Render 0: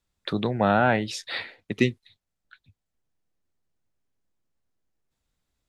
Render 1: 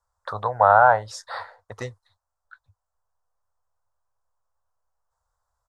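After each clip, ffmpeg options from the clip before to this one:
-af "firequalizer=gain_entry='entry(100,0);entry(160,-20);entry(340,-21);entry(490,2);entry(1000,14);entry(1500,5);entry(2400,-21);entry(5100,-2);entry(8000,0);entry(12000,-5)':delay=0.05:min_phase=1"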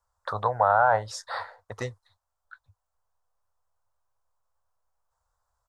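-af "alimiter=limit=-9.5dB:level=0:latency=1:release=36"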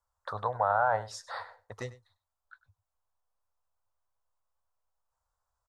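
-af "aecho=1:1:99:0.126,volume=-6dB"

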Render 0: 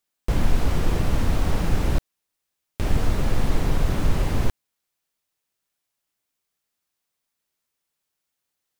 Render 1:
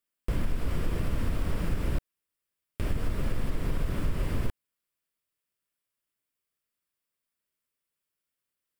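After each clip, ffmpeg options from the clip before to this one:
-af "equalizer=f=800:t=o:w=0.33:g=-9,equalizer=f=4k:t=o:w=0.33:g=-5,equalizer=f=6.3k:t=o:w=0.33:g=-8,acompressor=threshold=-17dB:ratio=6,volume=-5dB"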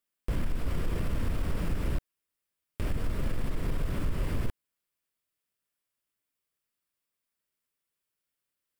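-af "asoftclip=type=tanh:threshold=-19dB"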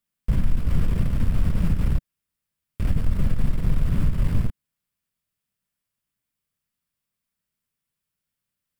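-af "aeval=exprs='0.1*(cos(1*acos(clip(val(0)/0.1,-1,1)))-cos(1*PI/2))+0.00794*(cos(3*acos(clip(val(0)/0.1,-1,1)))-cos(3*PI/2))+0.01*(cos(4*acos(clip(val(0)/0.1,-1,1)))-cos(4*PI/2))+0.00447*(cos(5*acos(clip(val(0)/0.1,-1,1)))-cos(5*PI/2))':c=same,lowshelf=f=250:t=q:w=1.5:g=8,volume=1.5dB"

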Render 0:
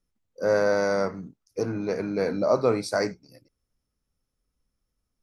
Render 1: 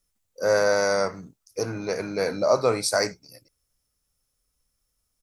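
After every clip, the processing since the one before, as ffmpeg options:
-af "firequalizer=gain_entry='entry(110,0);entry(220,-5);entry(560,2);entry(8000,13)':delay=0.05:min_phase=1"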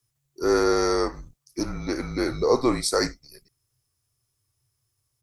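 -af "afreqshift=-140"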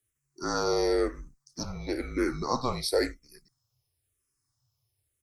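-filter_complex "[0:a]asplit=2[a][b];[b]afreqshift=-0.98[c];[a][c]amix=inputs=2:normalize=1,volume=-1dB"

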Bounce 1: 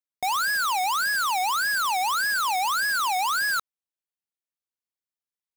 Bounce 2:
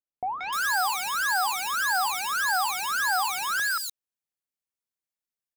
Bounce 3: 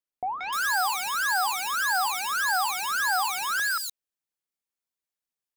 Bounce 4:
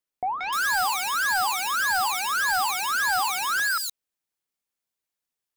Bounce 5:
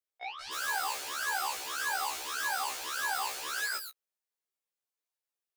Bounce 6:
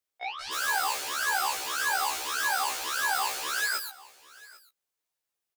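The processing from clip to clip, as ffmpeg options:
-filter_complex "[0:a]bandreject=f=60:t=h:w=6,bandreject=f=120:t=h:w=6,bandreject=f=180:t=h:w=6,bandreject=f=240:t=h:w=6,bandreject=f=300:t=h:w=6,bandreject=f=360:t=h:w=6,bandreject=f=420:t=h:w=6,acrossover=split=1000|3400[a][b][c];[b]adelay=180[d];[c]adelay=300[e];[a][d][e]amix=inputs=3:normalize=0"
-af "equalizer=f=110:t=o:w=1.1:g=-4.5"
-af "asoftclip=type=tanh:threshold=-21dB,volume=3.5dB"
-af "aeval=exprs='0.133*(cos(1*acos(clip(val(0)/0.133,-1,1)))-cos(1*PI/2))+0.0422*(cos(3*acos(clip(val(0)/0.133,-1,1)))-cos(3*PI/2))+0.0211*(cos(7*acos(clip(val(0)/0.133,-1,1)))-cos(7*PI/2))':c=same,lowshelf=f=290:t=q:w=1.5:g=-13,afftfilt=real='re*1.73*eq(mod(b,3),0)':imag='im*1.73*eq(mod(b,3),0)':win_size=2048:overlap=0.75,volume=-5dB"
-af "aecho=1:1:794:0.0841,volume=5dB"

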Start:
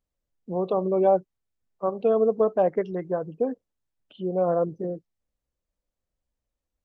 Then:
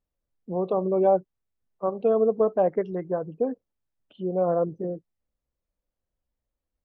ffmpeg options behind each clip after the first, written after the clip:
-af "highshelf=f=3k:g=-10"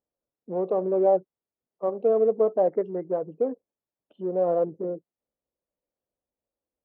-filter_complex "[0:a]asplit=2[a][b];[b]volume=31dB,asoftclip=hard,volume=-31dB,volume=-9dB[c];[a][c]amix=inputs=2:normalize=0,bandpass=f=490:t=q:w=0.93:csg=0"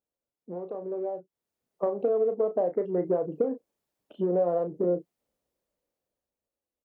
-filter_complex "[0:a]acompressor=threshold=-31dB:ratio=16,asplit=2[a][b];[b]adelay=34,volume=-9dB[c];[a][c]amix=inputs=2:normalize=0,dynaudnorm=f=260:g=11:m=12dB,volume=-3.5dB"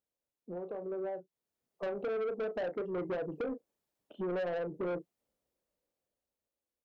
-af "asoftclip=type=tanh:threshold=-28.5dB,volume=-3dB"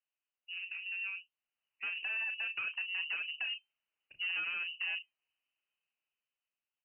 -filter_complex "[0:a]acrossover=split=130|370|1100[a][b][c][d];[a]acrusher=samples=10:mix=1:aa=0.000001:lfo=1:lforange=10:lforate=1.4[e];[c]flanger=delay=1:depth=7.3:regen=79:speed=1.1:shape=triangular[f];[e][b][f][d]amix=inputs=4:normalize=0,lowpass=f=2.6k:t=q:w=0.5098,lowpass=f=2.6k:t=q:w=0.6013,lowpass=f=2.6k:t=q:w=0.9,lowpass=f=2.6k:t=q:w=2.563,afreqshift=-3100"

